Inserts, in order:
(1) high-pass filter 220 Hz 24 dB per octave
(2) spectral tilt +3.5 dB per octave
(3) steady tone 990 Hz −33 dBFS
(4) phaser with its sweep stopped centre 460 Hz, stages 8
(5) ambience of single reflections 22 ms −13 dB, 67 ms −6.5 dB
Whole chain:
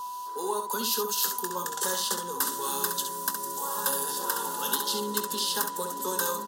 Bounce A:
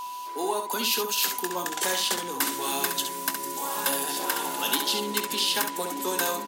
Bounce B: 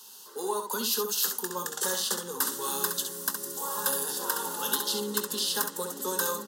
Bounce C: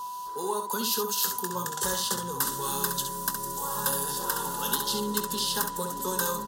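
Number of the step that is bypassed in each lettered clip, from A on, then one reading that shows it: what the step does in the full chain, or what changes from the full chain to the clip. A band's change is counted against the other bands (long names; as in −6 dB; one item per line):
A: 4, 2 kHz band +4.0 dB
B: 3, 1 kHz band −5.0 dB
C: 1, 125 Hz band +8.5 dB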